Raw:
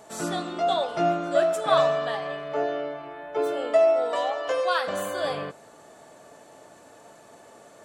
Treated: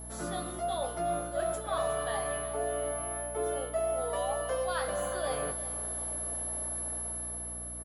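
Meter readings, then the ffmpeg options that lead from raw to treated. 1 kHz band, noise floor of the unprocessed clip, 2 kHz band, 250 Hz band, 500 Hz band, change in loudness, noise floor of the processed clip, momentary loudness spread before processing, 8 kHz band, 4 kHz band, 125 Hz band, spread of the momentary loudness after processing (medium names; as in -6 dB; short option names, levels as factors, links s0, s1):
-7.5 dB, -51 dBFS, -7.5 dB, -8.5 dB, -8.5 dB, -8.0 dB, -40 dBFS, 11 LU, +10.0 dB, -9.5 dB, -0.5 dB, 3 LU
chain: -filter_complex "[0:a]aeval=exprs='val(0)+0.0251*sin(2*PI*11000*n/s)':c=same,acrossover=split=200[s0][s1];[s1]dynaudnorm=f=210:g=11:m=3.55[s2];[s0][s2]amix=inputs=2:normalize=0,equalizer=f=2600:w=5.2:g=-6,asplit=2[s3][s4];[s4]adelay=19,volume=0.398[s5];[s3][s5]amix=inputs=2:normalize=0,areverse,acompressor=threshold=0.0631:ratio=6,areverse,highshelf=f=6700:g=-9,aecho=1:1:362|724|1086|1448|1810:0.188|0.0979|0.0509|0.0265|0.0138,aeval=exprs='val(0)+0.0112*(sin(2*PI*60*n/s)+sin(2*PI*2*60*n/s)/2+sin(2*PI*3*60*n/s)/3+sin(2*PI*4*60*n/s)/4+sin(2*PI*5*60*n/s)/5)':c=same,volume=0.531"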